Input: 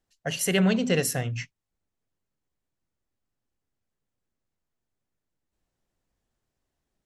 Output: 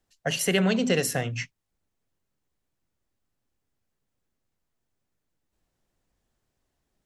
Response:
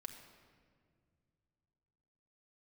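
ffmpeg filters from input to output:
-filter_complex "[0:a]acrossover=split=200|4300[link_01][link_02][link_03];[link_01]acompressor=threshold=-37dB:ratio=4[link_04];[link_02]acompressor=threshold=-24dB:ratio=4[link_05];[link_03]acompressor=threshold=-32dB:ratio=4[link_06];[link_04][link_05][link_06]amix=inputs=3:normalize=0,volume=3.5dB"

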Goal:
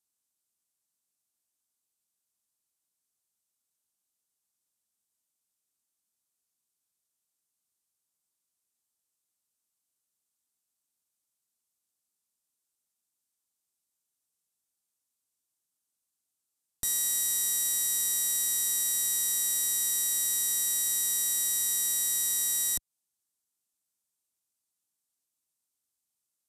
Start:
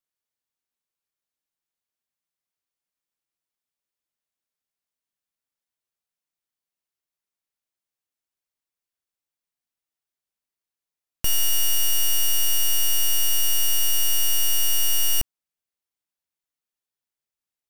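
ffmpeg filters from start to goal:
ffmpeg -i in.wav -af "asetrate=29459,aresample=44100,equalizer=frequency=250:width_type=o:width=1:gain=3,equalizer=frequency=500:width_type=o:width=1:gain=-4,equalizer=frequency=2000:width_type=o:width=1:gain=-7,equalizer=frequency=8000:width_type=o:width=1:gain=8,equalizer=frequency=16000:width_type=o:width=1:gain=7,alimiter=limit=-16dB:level=0:latency=1:release=177,highpass=frequency=50:poles=1,acontrast=33,volume=-6.5dB" out.wav

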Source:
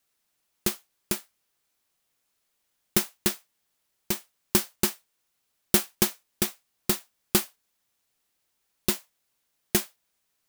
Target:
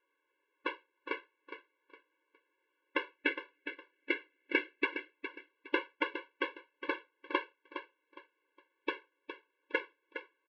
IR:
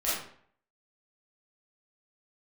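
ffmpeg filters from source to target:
-filter_complex "[0:a]highpass=frequency=160:width_type=q:width=0.5412,highpass=frequency=160:width_type=q:width=1.307,lowpass=frequency=2800:width_type=q:width=0.5176,lowpass=frequency=2800:width_type=q:width=0.7071,lowpass=frequency=2800:width_type=q:width=1.932,afreqshift=-190,asplit=2[link_01][link_02];[link_02]acompressor=threshold=-33dB:ratio=6,volume=3dB[link_03];[link_01][link_03]amix=inputs=2:normalize=0,asettb=1/sr,asplit=3[link_04][link_05][link_06];[link_04]atrim=end=3.184[link_07];[link_05]atrim=start=3.18:end=4.85,asetpts=PTS-STARTPTS,afade=type=in:duration=0.004:curve=qsin,afade=type=out:start_time=1.666:duration=0.004:curve=qsin,equalizer=frequency=250:width_type=o:width=1:gain=10,equalizer=frequency=1000:width_type=o:width=1:gain=-10,equalizer=frequency=2000:width_type=o:width=1:gain=9[link_08];[link_06]atrim=start=4.846[link_09];[link_07][link_08]acrossfade=duration=0.004:curve1=hsin:curve2=qsin[link_10];[link_10][link_09]acrossfade=duration=0.004:curve1=qsin:curve2=hsin,aecho=1:1:412|824|1236:0.316|0.0885|0.0248,afftfilt=real='re*eq(mod(floor(b*sr/1024/290),2),1)':imag='im*eq(mod(floor(b*sr/1024/290),2),1)':win_size=1024:overlap=0.75"

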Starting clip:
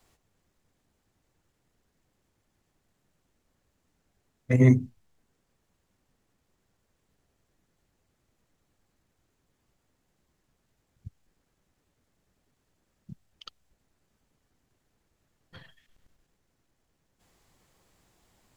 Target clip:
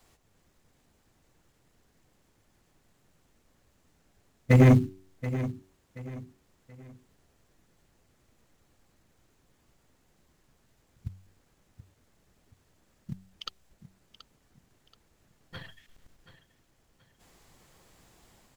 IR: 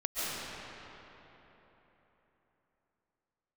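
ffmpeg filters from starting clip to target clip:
-filter_complex "[0:a]dynaudnorm=framelen=100:gausssize=5:maxgain=3.5dB,bandreject=frequency=94.47:width_type=h:width=4,bandreject=frequency=188.94:width_type=h:width=4,bandreject=frequency=283.41:width_type=h:width=4,bandreject=frequency=377.88:width_type=h:width=4,asplit=2[link_01][link_02];[link_02]acrusher=bits=4:mode=log:mix=0:aa=0.000001,volume=-7dB[link_03];[link_01][link_03]amix=inputs=2:normalize=0,asoftclip=type=hard:threshold=-13dB,aecho=1:1:729|1458|2187:0.2|0.0678|0.0231"

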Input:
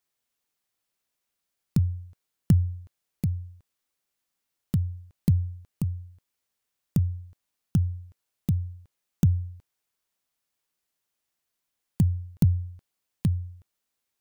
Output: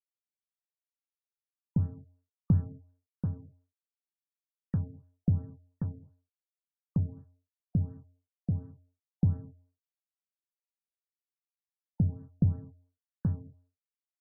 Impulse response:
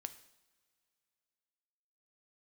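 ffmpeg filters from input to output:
-filter_complex "[0:a]aeval=exprs='sgn(val(0))*max(abs(val(0))-0.0106,0)':channel_layout=same[link_01];[1:a]atrim=start_sample=2205,afade=type=out:start_time=0.32:duration=0.01,atrim=end_sample=14553[link_02];[link_01][link_02]afir=irnorm=-1:irlink=0,afftfilt=real='re*lt(b*sr/1024,710*pow(1900/710,0.5+0.5*sin(2*PI*2.8*pts/sr)))':imag='im*lt(b*sr/1024,710*pow(1900/710,0.5+0.5*sin(2*PI*2.8*pts/sr)))':win_size=1024:overlap=0.75"

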